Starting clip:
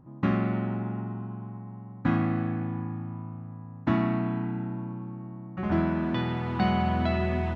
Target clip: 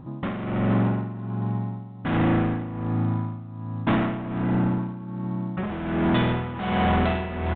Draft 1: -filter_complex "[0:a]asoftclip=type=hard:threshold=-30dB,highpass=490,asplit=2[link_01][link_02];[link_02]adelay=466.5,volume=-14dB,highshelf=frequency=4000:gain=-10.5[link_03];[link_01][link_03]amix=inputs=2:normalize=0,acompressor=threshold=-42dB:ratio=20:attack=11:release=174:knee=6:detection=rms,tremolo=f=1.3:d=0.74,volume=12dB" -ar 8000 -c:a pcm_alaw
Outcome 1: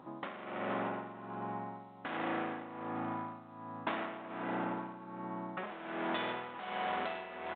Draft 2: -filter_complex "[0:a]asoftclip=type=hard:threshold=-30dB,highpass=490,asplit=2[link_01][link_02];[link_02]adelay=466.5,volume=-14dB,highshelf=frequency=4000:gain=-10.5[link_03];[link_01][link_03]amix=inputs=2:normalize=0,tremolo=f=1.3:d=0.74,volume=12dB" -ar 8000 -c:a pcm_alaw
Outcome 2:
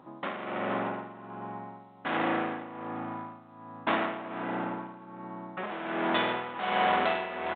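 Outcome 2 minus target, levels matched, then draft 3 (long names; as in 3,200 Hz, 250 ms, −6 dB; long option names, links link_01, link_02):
500 Hz band +3.0 dB
-filter_complex "[0:a]asoftclip=type=hard:threshold=-30dB,asplit=2[link_01][link_02];[link_02]adelay=466.5,volume=-14dB,highshelf=frequency=4000:gain=-10.5[link_03];[link_01][link_03]amix=inputs=2:normalize=0,tremolo=f=1.3:d=0.74,volume=12dB" -ar 8000 -c:a pcm_alaw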